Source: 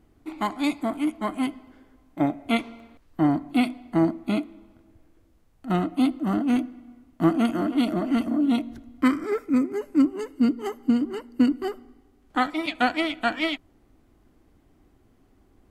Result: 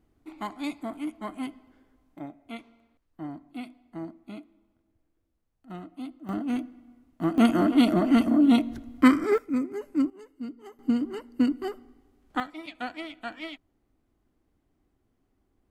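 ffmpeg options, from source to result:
-af "asetnsamples=n=441:p=0,asendcmd='2.19 volume volume -16.5dB;6.29 volume volume -6.5dB;7.38 volume volume 3dB;9.38 volume volume -5.5dB;10.1 volume volume -16dB;10.79 volume volume -3.5dB;12.4 volume volume -12.5dB',volume=0.398"

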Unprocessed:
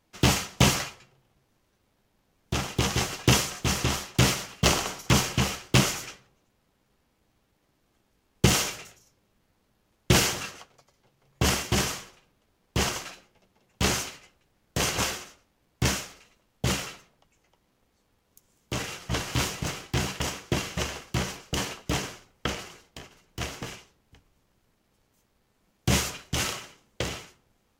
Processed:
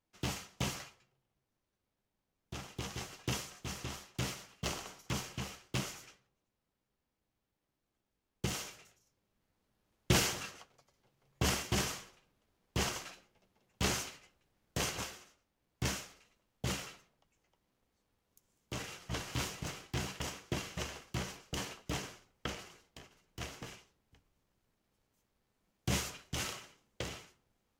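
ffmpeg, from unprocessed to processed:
-af "volume=0.891,afade=t=in:st=8.76:d=1.35:silence=0.398107,afade=t=out:st=14.78:d=0.32:silence=0.354813,afade=t=in:st=15.1:d=0.8:silence=0.446684"

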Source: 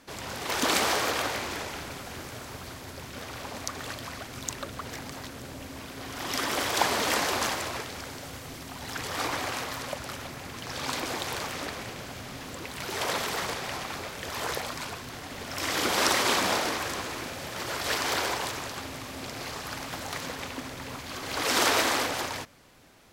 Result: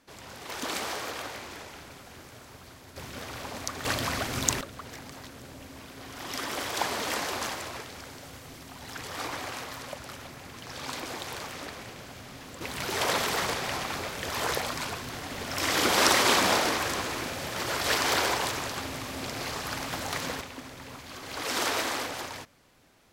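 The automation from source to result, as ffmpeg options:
-af "asetnsamples=n=441:p=0,asendcmd='2.96 volume volume 0dB;3.85 volume volume 8.5dB;4.61 volume volume -4.5dB;12.61 volume volume 2.5dB;20.41 volume volume -5dB',volume=0.398"

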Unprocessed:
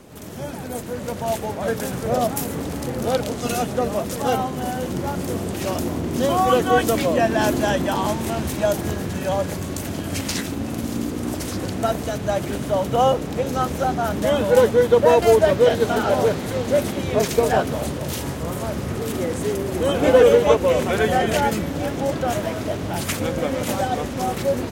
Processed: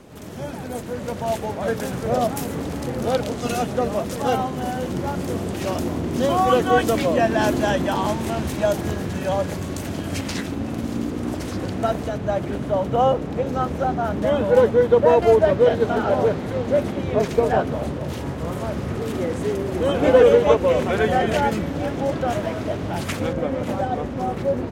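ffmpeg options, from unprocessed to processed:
-af "asetnsamples=n=441:p=0,asendcmd='10.2 lowpass f 3100;12.08 lowpass f 1700;18.38 lowpass f 3200;23.33 lowpass f 1200',lowpass=f=5600:p=1"

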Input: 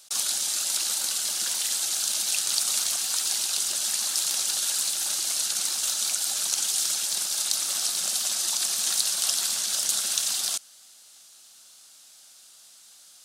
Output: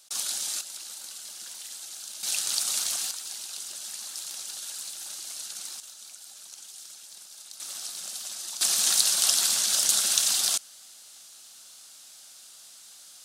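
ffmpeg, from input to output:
-af "asetnsamples=n=441:p=0,asendcmd='0.61 volume volume -13.5dB;2.23 volume volume -2.5dB;3.11 volume volume -11dB;5.8 volume volume -19dB;7.6 volume volume -10dB;8.61 volume volume 2.5dB',volume=0.631"

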